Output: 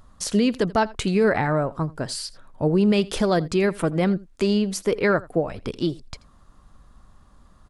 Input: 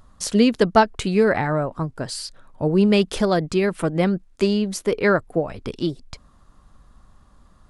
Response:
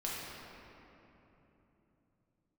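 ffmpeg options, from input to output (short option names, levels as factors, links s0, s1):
-filter_complex "[0:a]alimiter=limit=0.282:level=0:latency=1:release=54,asplit=2[s0][s1];[s1]aecho=0:1:83:0.0841[s2];[s0][s2]amix=inputs=2:normalize=0"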